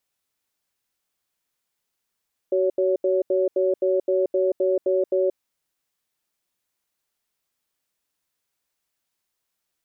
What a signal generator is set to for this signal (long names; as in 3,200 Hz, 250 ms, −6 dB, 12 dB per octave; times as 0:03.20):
tone pair in a cadence 376 Hz, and 561 Hz, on 0.18 s, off 0.08 s, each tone −20.5 dBFS 2.78 s